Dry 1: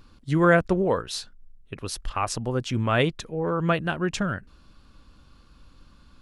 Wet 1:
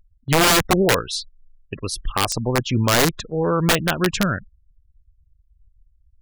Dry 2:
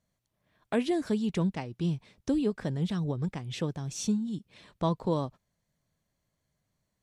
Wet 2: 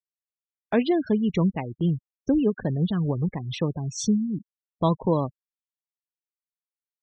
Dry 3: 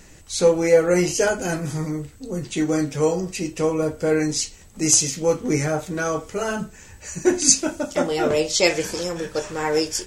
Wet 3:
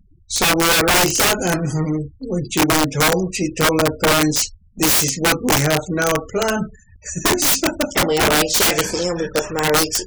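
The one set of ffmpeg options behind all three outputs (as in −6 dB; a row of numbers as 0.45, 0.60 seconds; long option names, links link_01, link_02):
-af "afftfilt=real='re*gte(hypot(re,im),0.0158)':imag='im*gte(hypot(re,im),0.0158)':win_size=1024:overlap=0.75,aeval=exprs='(mod(5.96*val(0)+1,2)-1)/5.96':channel_layout=same,agate=range=-8dB:threshold=-41dB:ratio=16:detection=peak,volume=6dB"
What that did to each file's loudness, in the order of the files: +5.5, +6.0, +4.5 LU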